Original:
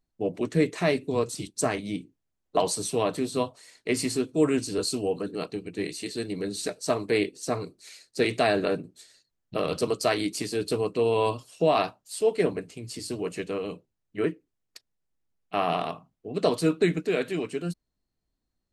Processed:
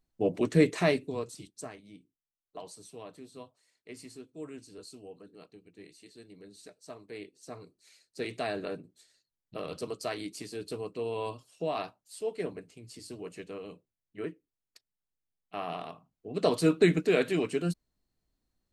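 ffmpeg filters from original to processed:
-af "volume=21.5dB,afade=t=out:st=0.75:d=0.41:silence=0.334965,afade=t=out:st=1.16:d=0.62:silence=0.281838,afade=t=in:st=7.08:d=1.36:silence=0.334965,afade=t=in:st=15.92:d=1.01:silence=0.266073"

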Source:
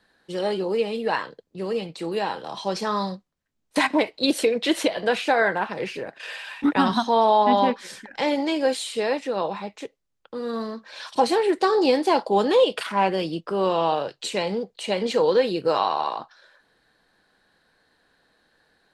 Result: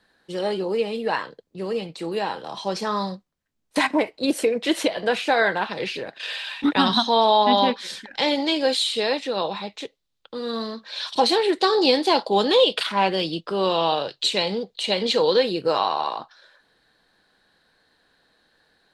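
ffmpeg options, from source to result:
-af "asetnsamples=n=441:p=0,asendcmd='3.91 equalizer g -6;4.67 equalizer g 1.5;5.32 equalizer g 11.5;15.43 equalizer g 4',equalizer=f=3.8k:t=o:w=0.82:g=1"

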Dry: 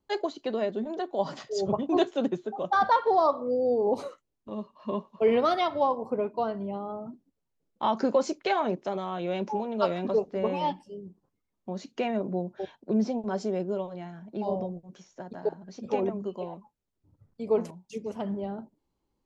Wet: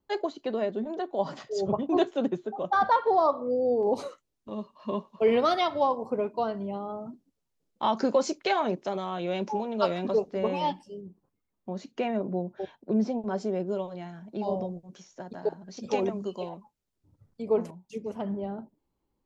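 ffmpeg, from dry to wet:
-af "asetnsamples=n=441:p=0,asendcmd='3.83 equalizer g 4;11.01 equalizer g -3.5;13.67 equalizer g 4;15.77 equalizer g 12;16.49 equalizer g 3;17.42 equalizer g -4.5',equalizer=f=5.7k:t=o:w=2:g=-3.5"

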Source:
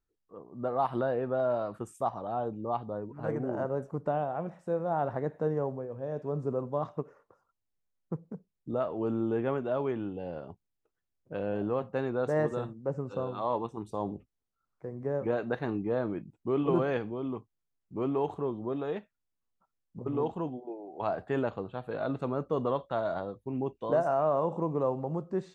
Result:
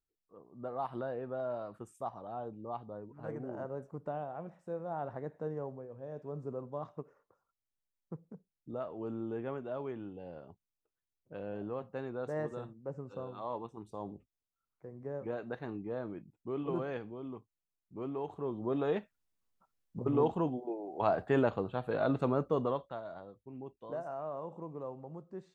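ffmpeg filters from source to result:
-af "volume=2dB,afade=t=in:st=18.33:d=0.53:silence=0.298538,afade=t=out:st=22.29:d=0.54:silence=0.398107,afade=t=out:st=22.83:d=0.18:silence=0.446684"

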